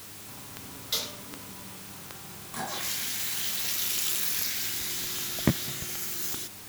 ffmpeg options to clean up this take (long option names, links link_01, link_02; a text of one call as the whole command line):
ffmpeg -i in.wav -af "adeclick=threshold=4,bandreject=frequency=101.5:width_type=h:width=4,bandreject=frequency=203:width_type=h:width=4,bandreject=frequency=304.5:width_type=h:width=4,bandreject=frequency=406:width_type=h:width=4,afwtdn=0.0056" out.wav